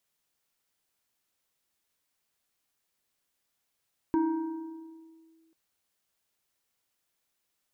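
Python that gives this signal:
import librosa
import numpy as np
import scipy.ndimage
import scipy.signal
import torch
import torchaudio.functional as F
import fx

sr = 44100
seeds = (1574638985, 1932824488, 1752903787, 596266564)

y = fx.fm2(sr, length_s=1.39, level_db=-21, carrier_hz=325.0, ratio=1.91, index=0.66, index_s=1.29, decay_s=1.9, shape='linear')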